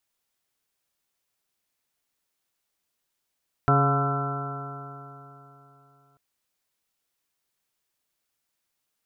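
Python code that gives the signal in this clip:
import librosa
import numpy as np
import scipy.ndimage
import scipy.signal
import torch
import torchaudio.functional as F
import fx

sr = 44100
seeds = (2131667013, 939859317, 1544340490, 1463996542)

y = fx.additive_stiff(sr, length_s=2.49, hz=138.0, level_db=-19.5, upper_db=(-8.0, -7.0, -15.5, -4.0, -16.0, -10.0, -16.0, -1.0, -18.5), decay_s=3.31, stiffness=0.002)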